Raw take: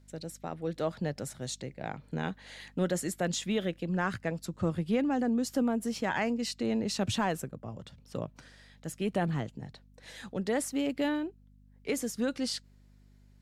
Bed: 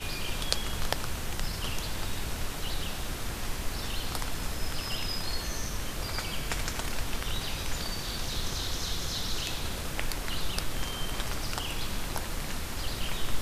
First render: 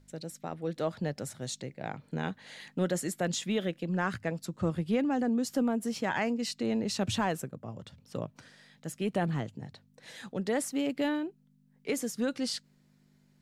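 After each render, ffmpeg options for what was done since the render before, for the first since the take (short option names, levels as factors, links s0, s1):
-af "bandreject=f=50:t=h:w=4,bandreject=f=100:t=h:w=4"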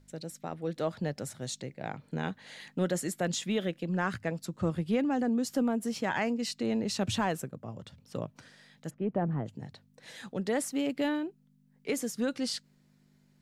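-filter_complex "[0:a]asplit=3[s0][s1][s2];[s0]afade=t=out:st=8.89:d=0.02[s3];[s1]lowpass=1100,afade=t=in:st=8.89:d=0.02,afade=t=out:st=9.45:d=0.02[s4];[s2]afade=t=in:st=9.45:d=0.02[s5];[s3][s4][s5]amix=inputs=3:normalize=0"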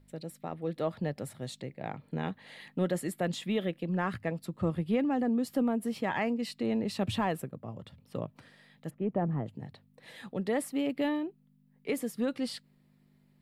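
-af "equalizer=f=6300:w=1.6:g=-13.5,bandreject=f=1500:w=9.3"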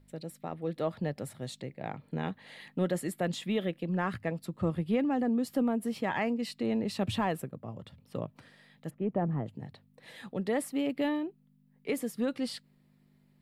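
-af anull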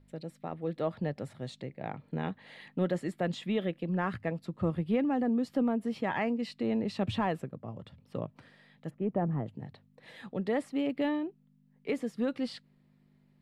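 -filter_complex "[0:a]acrossover=split=8200[s0][s1];[s1]acompressor=threshold=0.00112:ratio=4:attack=1:release=60[s2];[s0][s2]amix=inputs=2:normalize=0,highshelf=f=6600:g=-12"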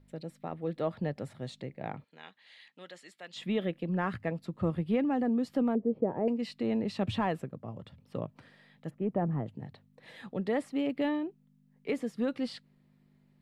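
-filter_complex "[0:a]asplit=3[s0][s1][s2];[s0]afade=t=out:st=2.03:d=0.02[s3];[s1]bandpass=f=4600:t=q:w=0.85,afade=t=in:st=2.03:d=0.02,afade=t=out:st=3.35:d=0.02[s4];[s2]afade=t=in:st=3.35:d=0.02[s5];[s3][s4][s5]amix=inputs=3:normalize=0,asettb=1/sr,asplit=3[s6][s7][s8];[s6]atrim=end=5.754[s9];[s7]atrim=start=5.75:end=6.28,asetpts=PTS-STARTPTS,afade=t=in:d=0.004:c=qsin,afade=t=out:st=0.526:d=0.004:c=qsin,lowpass=f=480:t=q:w=2.5[s10];[s8]atrim=start=6.276[s11];[s9][s10]acrossfade=d=0.004:c1=hsin:c2=qsin[s12];[s12][s11]acrossfade=d=0.004:c1=qsin:c2=hsin"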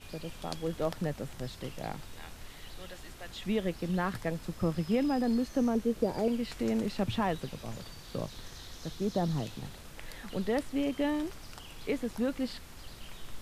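-filter_complex "[1:a]volume=0.2[s0];[0:a][s0]amix=inputs=2:normalize=0"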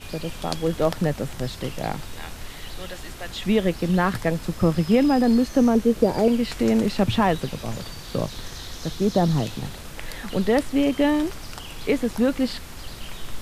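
-af "volume=3.35"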